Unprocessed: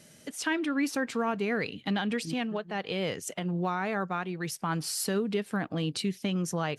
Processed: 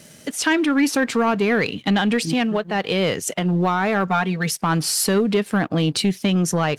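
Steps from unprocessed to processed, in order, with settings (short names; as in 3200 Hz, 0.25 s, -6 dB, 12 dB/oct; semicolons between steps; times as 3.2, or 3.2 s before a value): 4.07–4.52 comb 4.4 ms, depth 70%; sample leveller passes 1; gain +8 dB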